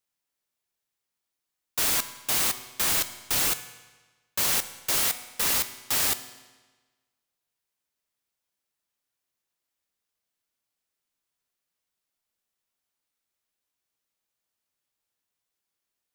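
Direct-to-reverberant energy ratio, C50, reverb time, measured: 10.5 dB, 12.5 dB, 1.3 s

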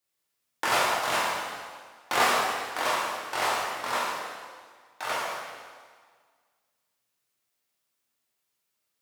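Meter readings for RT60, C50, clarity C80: 1.7 s, −0.5 dB, 1.0 dB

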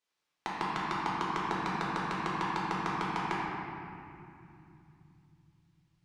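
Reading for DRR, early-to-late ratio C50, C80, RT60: −7.0 dB, −2.5 dB, −1.0 dB, 2.7 s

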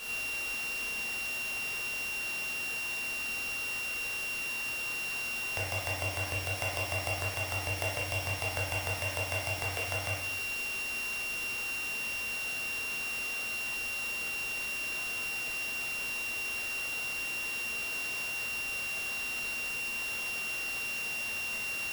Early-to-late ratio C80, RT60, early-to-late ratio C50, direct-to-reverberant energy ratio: 4.5 dB, 0.85 s, 1.0 dB, −4.5 dB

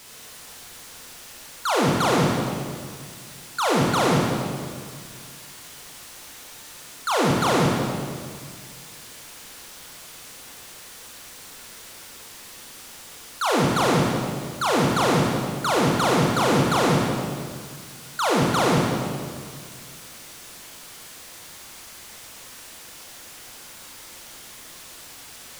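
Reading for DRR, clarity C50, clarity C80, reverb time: −2.5 dB, −0.5 dB, 1.5 dB, 2.0 s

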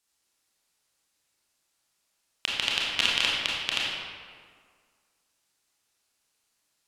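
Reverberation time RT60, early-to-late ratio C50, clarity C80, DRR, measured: 1.9 s, −2.0 dB, 0.5 dB, −5.5 dB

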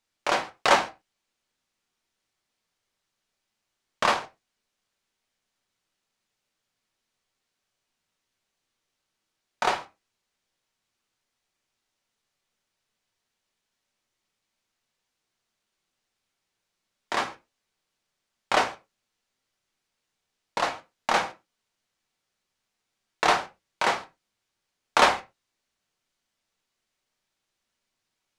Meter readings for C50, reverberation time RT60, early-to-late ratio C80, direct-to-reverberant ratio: 16.5 dB, non-exponential decay, 23.5 dB, 5.5 dB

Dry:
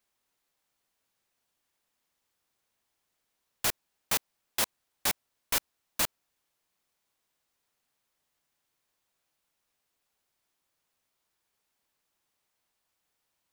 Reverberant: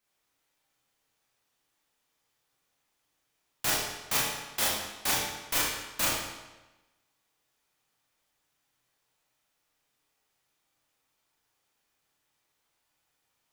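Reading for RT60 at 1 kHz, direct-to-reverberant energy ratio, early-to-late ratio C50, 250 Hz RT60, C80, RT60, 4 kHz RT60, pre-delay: 1.1 s, −6.5 dB, 0.0 dB, 1.1 s, 2.5 dB, 1.1 s, 1.0 s, 24 ms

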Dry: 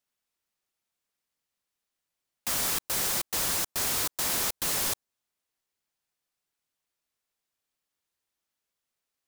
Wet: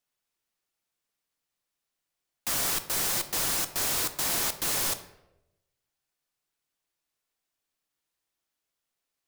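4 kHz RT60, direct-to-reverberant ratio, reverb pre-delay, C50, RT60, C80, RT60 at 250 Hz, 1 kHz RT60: 0.60 s, 9.0 dB, 3 ms, 12.5 dB, 0.90 s, 15.0 dB, 0.90 s, 0.80 s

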